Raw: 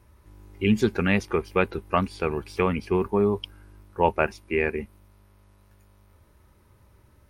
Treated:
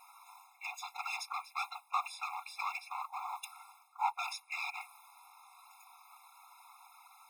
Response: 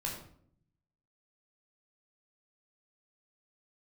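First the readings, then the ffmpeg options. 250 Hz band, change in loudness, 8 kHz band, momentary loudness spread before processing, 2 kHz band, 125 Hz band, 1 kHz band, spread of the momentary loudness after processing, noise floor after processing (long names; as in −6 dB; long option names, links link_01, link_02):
below −40 dB, −14.0 dB, can't be measured, 9 LU, −11.0 dB, below −40 dB, −7.5 dB, 21 LU, −64 dBFS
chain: -af "areverse,acompressor=threshold=-35dB:ratio=5,areverse,acrusher=bits=8:mode=log:mix=0:aa=0.000001,volume=34.5dB,asoftclip=hard,volume=-34.5dB,afftfilt=real='hypot(re,im)*cos(2*PI*random(0))':imag='hypot(re,im)*sin(2*PI*random(1))':win_size=512:overlap=0.75,afftfilt=real='re*eq(mod(floor(b*sr/1024/690),2),1)':imag='im*eq(mod(floor(b*sr/1024/690),2),1)':win_size=1024:overlap=0.75,volume=16.5dB"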